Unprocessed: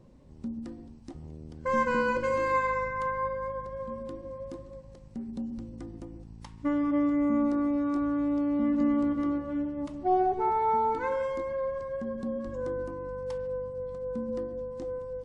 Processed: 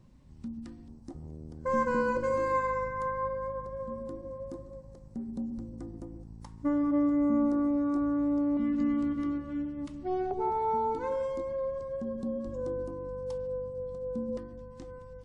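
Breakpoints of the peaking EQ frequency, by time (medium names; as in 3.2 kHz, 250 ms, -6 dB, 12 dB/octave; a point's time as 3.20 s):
peaking EQ -11.5 dB 1.4 oct
480 Hz
from 0.88 s 2.8 kHz
from 8.57 s 690 Hz
from 10.31 s 1.8 kHz
from 14.37 s 490 Hz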